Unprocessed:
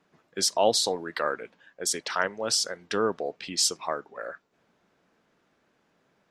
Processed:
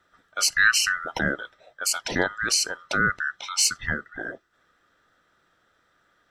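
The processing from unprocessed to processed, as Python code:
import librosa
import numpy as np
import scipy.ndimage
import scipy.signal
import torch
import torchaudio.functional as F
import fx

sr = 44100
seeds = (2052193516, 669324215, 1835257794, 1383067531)

y = fx.band_swap(x, sr, width_hz=1000)
y = y * 10.0 ** (3.0 / 20.0)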